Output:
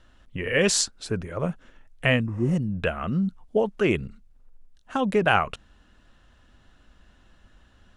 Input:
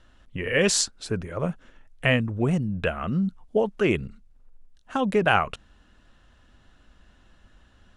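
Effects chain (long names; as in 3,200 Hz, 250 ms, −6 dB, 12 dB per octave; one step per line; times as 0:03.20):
healed spectral selection 0:02.30–0:02.52, 400–9,400 Hz both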